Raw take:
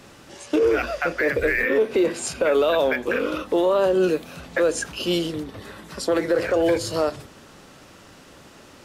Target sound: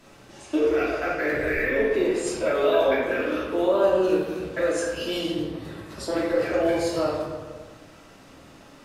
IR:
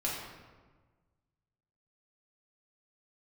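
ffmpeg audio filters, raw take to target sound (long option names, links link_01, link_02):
-filter_complex "[1:a]atrim=start_sample=2205,asetrate=41454,aresample=44100[link_01];[0:a][link_01]afir=irnorm=-1:irlink=0,volume=-8dB"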